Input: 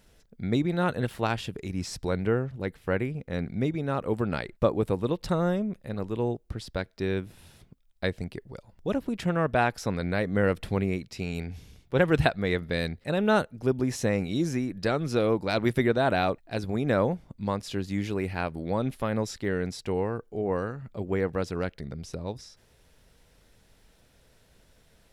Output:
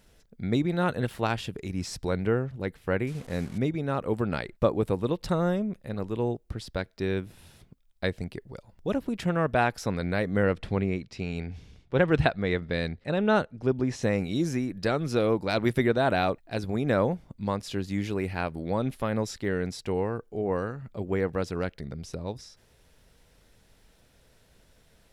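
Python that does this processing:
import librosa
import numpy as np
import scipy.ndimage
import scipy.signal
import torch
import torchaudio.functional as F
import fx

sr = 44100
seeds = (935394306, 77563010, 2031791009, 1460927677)

y = fx.delta_mod(x, sr, bps=64000, step_db=-42.0, at=(3.07, 3.58))
y = fx.air_absorb(y, sr, metres=76.0, at=(10.43, 14.03))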